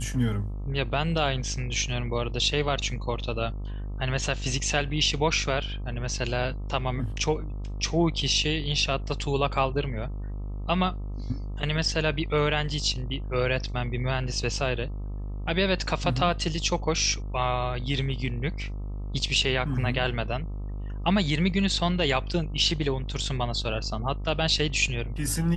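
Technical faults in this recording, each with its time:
buzz 50 Hz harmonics 26 -33 dBFS

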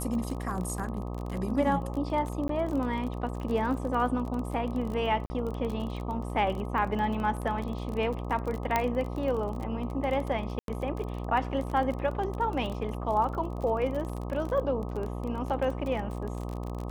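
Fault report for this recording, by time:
buzz 60 Hz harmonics 21 -35 dBFS
crackle 28/s -33 dBFS
2.48–2.49 gap 13 ms
5.26–5.3 gap 40 ms
8.76 pop -11 dBFS
10.59–10.68 gap 92 ms

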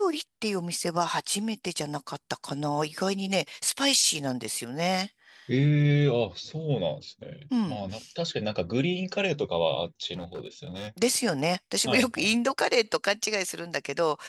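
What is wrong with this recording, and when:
10.13–10.88 clipped -32 dBFS

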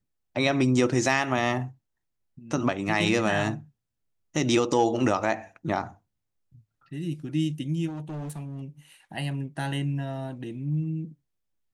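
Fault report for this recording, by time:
7.87–8.62 clipped -32 dBFS

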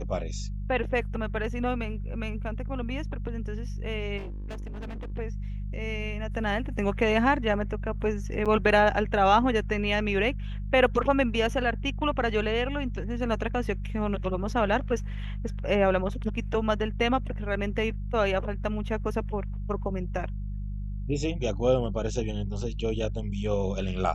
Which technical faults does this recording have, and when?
hum 50 Hz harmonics 4 -33 dBFS
4.17–5.12 clipped -33.5 dBFS
8.45–8.46 gap 6.8 ms

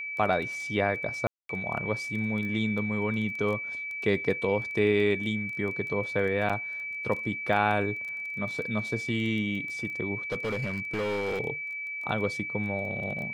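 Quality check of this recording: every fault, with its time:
crackle 10/s -34 dBFS
tone 2300 Hz -33 dBFS
1.27–1.49 gap 0.223 s
6.49–6.5 gap 6.4 ms
10.32–11.41 clipped -26.5 dBFS

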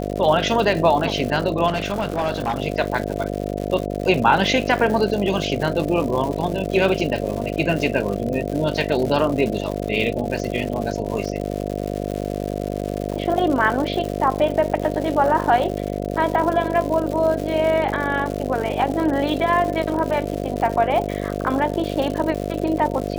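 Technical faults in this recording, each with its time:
buzz 50 Hz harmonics 14 -26 dBFS
crackle 180/s -26 dBFS
1.67–2.6 clipped -17.5 dBFS

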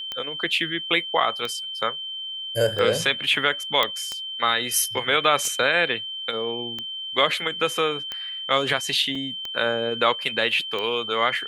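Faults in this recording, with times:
tick 45 rpm -16 dBFS
tone 3100 Hz -30 dBFS
3.83 pop -7 dBFS
9.15 gap 4 ms

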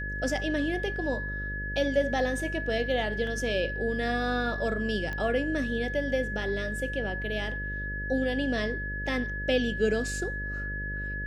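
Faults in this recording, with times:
buzz 50 Hz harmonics 12 -36 dBFS
tone 1700 Hz -34 dBFS
3.27 gap 2.1 ms
5.13 pop -22 dBFS

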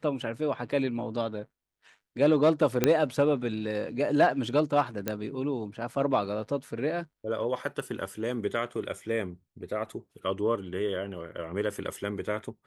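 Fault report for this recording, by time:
2.84 pop -7 dBFS
5.08 pop -13 dBFS

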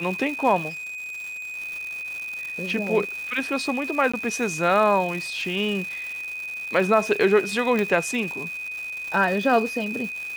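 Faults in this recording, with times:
crackle 380/s -31 dBFS
tone 2500 Hz -30 dBFS
0.69–1.57 clipped -32.5 dBFS
4.12–4.13 gap 15 ms
7.79 pop -12 dBFS

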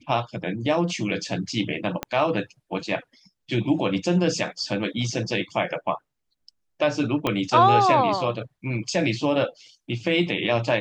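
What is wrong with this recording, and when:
2.03 pop -11 dBFS
7.27 pop -10 dBFS

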